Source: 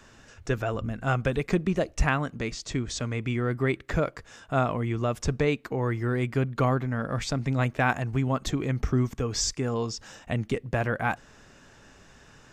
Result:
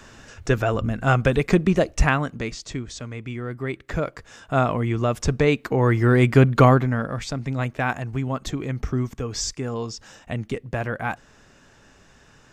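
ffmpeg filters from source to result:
ffmpeg -i in.wav -af "volume=22.5dB,afade=type=out:start_time=1.75:duration=1.19:silence=0.298538,afade=type=in:start_time=3.62:duration=1.07:silence=0.375837,afade=type=in:start_time=5.37:duration=1.12:silence=0.446684,afade=type=out:start_time=6.49:duration=0.67:silence=0.251189" out.wav

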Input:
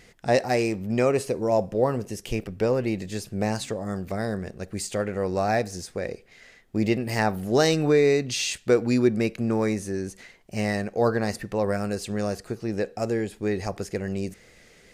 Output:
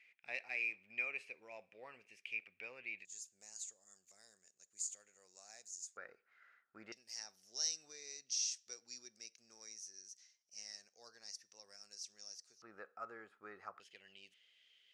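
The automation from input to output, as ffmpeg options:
ffmpeg -i in.wav -af "asetnsamples=nb_out_samples=441:pad=0,asendcmd='3.05 bandpass f 6900;5.97 bandpass f 1400;6.92 bandpass f 5700;12.62 bandpass f 1300;13.8 bandpass f 3100',bandpass=frequency=2400:width_type=q:width=11:csg=0" out.wav

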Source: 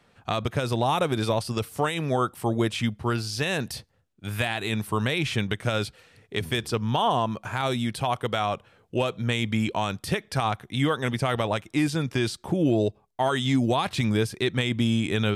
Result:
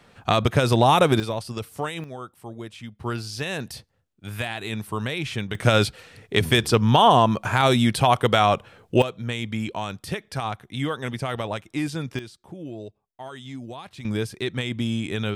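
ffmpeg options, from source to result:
ffmpeg -i in.wav -af "asetnsamples=nb_out_samples=441:pad=0,asendcmd='1.2 volume volume -3.5dB;2.04 volume volume -12.5dB;3 volume volume -2.5dB;5.55 volume volume 8dB;9.02 volume volume -3dB;12.19 volume volume -14dB;14.05 volume volume -2.5dB',volume=7dB" out.wav

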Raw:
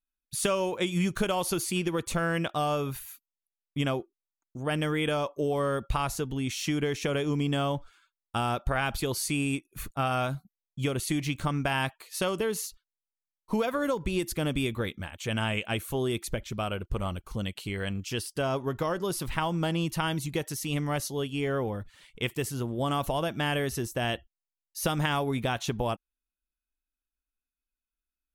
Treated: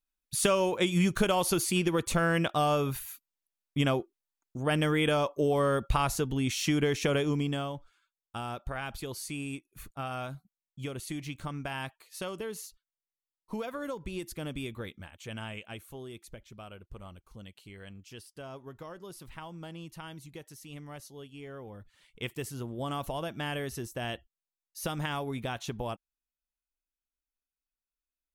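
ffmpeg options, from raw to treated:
ffmpeg -i in.wav -af "volume=10.5dB,afade=type=out:start_time=7.12:duration=0.6:silence=0.316228,afade=type=out:start_time=14.99:duration=1.07:silence=0.473151,afade=type=in:start_time=21.63:duration=0.61:silence=0.354813" out.wav

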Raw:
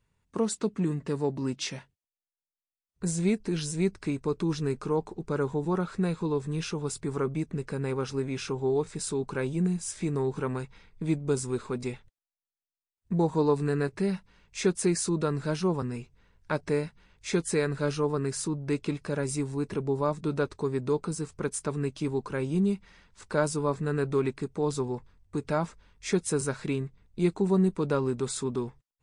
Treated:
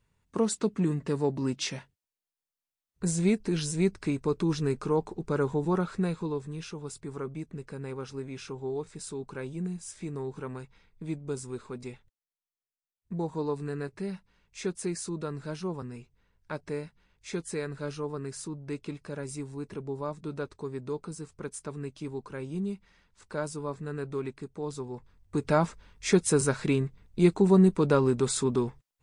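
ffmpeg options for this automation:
ffmpeg -i in.wav -af "volume=12dB,afade=type=out:start_time=5.77:duration=0.79:silence=0.398107,afade=type=in:start_time=24.9:duration=0.63:silence=0.281838" out.wav

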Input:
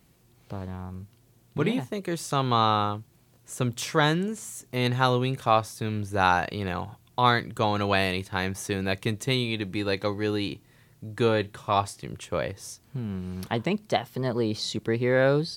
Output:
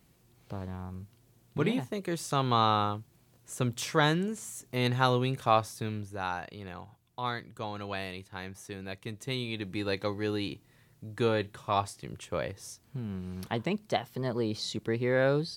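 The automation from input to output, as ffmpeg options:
ffmpeg -i in.wav -af "volume=5dB,afade=type=out:start_time=5.75:duration=0.44:silence=0.334965,afade=type=in:start_time=9.04:duration=0.76:silence=0.398107" out.wav

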